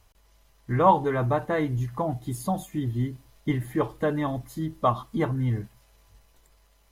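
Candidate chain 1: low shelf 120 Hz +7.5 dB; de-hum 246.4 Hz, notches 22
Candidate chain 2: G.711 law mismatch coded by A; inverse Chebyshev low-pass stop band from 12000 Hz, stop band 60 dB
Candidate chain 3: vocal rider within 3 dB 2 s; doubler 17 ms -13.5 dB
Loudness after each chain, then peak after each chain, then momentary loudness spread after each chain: -25.5, -27.5, -26.5 LUFS; -7.0, -7.0, -8.5 dBFS; 9, 11, 8 LU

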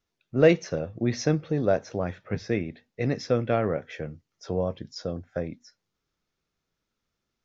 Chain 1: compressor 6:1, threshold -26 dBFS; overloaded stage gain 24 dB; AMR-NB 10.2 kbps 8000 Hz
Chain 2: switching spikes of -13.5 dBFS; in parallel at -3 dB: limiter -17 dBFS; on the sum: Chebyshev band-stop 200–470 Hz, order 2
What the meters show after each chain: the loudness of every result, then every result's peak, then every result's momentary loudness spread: -35.5, -19.5 LUFS; -19.0, -2.5 dBFS; 7, 4 LU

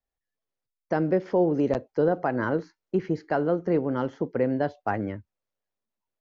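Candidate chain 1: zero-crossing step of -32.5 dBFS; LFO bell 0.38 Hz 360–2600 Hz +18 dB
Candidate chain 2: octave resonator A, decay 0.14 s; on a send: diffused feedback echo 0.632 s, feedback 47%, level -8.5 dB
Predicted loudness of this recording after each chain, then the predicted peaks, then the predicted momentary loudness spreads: -20.5, -38.0 LUFS; -2.5, -19.5 dBFS; 10, 13 LU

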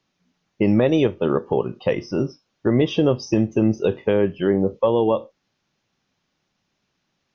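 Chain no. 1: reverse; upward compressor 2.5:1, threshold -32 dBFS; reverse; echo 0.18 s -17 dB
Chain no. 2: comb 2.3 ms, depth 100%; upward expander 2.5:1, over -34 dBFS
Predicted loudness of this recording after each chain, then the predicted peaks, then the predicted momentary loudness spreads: -21.0, -22.0 LUFS; -7.0, -4.5 dBFS; 7, 9 LU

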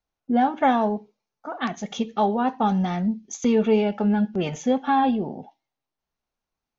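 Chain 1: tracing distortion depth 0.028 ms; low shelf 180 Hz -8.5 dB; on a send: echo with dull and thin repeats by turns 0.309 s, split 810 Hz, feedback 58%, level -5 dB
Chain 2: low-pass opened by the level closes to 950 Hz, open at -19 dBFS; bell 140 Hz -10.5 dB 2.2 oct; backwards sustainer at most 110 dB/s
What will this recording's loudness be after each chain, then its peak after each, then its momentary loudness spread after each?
-24.5, -26.5 LUFS; -8.5, -9.5 dBFS; 14, 12 LU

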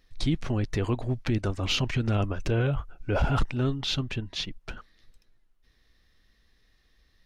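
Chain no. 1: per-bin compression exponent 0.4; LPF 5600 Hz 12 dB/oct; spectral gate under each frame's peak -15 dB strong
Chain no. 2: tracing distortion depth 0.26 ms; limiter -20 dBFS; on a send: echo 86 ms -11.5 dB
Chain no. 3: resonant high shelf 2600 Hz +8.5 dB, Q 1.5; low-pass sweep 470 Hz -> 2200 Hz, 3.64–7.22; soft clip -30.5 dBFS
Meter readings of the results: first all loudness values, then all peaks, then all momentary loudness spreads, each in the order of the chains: -25.5, -30.5, -36.0 LUFS; -11.0, -18.0, -30.5 dBFS; 19, 6, 10 LU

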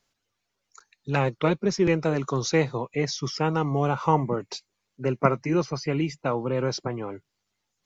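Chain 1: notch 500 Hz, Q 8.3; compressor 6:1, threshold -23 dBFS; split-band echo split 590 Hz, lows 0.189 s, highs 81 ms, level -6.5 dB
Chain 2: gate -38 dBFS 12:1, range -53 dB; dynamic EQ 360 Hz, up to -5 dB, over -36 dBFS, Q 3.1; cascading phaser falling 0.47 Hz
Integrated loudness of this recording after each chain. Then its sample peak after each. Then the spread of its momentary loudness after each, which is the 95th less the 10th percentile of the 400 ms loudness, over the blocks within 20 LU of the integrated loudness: -29.0, -28.0 LUFS; -11.0, -9.0 dBFS; 9, 9 LU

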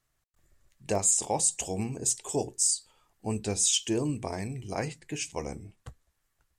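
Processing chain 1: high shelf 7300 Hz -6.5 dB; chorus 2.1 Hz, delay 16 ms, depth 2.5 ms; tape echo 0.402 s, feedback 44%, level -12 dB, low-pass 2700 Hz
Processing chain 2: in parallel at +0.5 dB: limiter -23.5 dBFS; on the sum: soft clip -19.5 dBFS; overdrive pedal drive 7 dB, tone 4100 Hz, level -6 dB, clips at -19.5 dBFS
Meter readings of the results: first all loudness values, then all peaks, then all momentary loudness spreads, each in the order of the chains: -34.0, -30.5 LUFS; -17.5, -20.0 dBFS; 14, 12 LU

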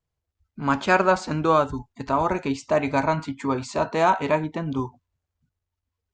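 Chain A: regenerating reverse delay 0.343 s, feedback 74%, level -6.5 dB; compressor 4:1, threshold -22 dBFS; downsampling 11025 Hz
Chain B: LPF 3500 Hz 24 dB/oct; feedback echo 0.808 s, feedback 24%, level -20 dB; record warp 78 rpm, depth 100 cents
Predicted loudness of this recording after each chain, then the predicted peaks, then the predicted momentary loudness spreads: -27.0, -23.5 LUFS; -11.5, -5.0 dBFS; 5, 9 LU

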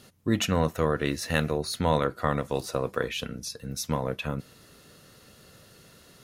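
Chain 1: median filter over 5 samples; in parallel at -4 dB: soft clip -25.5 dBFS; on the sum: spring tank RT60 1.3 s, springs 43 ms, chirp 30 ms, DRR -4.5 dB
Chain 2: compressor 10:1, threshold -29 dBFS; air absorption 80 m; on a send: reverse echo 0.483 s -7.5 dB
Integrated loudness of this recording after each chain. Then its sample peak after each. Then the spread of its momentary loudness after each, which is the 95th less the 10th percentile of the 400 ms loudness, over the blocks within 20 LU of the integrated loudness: -20.5, -36.0 LUFS; -4.0, -15.0 dBFS; 10, 20 LU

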